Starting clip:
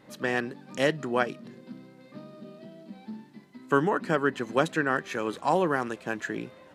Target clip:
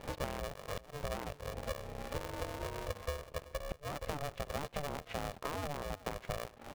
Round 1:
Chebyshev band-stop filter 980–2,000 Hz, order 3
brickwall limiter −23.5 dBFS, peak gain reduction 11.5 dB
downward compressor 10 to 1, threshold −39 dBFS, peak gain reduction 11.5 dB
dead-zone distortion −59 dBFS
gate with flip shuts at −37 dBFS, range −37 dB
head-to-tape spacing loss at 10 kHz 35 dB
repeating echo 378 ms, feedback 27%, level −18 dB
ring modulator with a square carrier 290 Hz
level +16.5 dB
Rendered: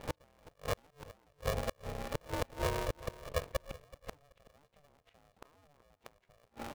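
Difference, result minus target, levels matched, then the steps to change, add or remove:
downward compressor: peak gain reduction −8.5 dB
change: downward compressor 10 to 1, threshold −48.5 dBFS, peak gain reduction 20.5 dB

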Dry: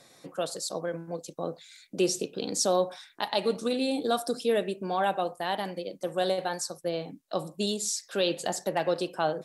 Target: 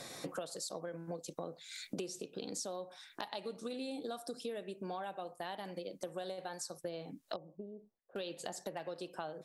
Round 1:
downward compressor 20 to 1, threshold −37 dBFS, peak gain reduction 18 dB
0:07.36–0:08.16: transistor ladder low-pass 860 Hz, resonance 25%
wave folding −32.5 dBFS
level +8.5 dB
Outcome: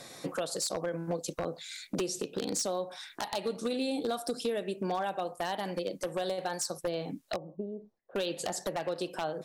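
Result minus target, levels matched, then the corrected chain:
downward compressor: peak gain reduction −9.5 dB
downward compressor 20 to 1, threshold −47 dBFS, peak gain reduction 27.5 dB
0:07.36–0:08.16: transistor ladder low-pass 860 Hz, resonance 25%
wave folding −32.5 dBFS
level +8.5 dB

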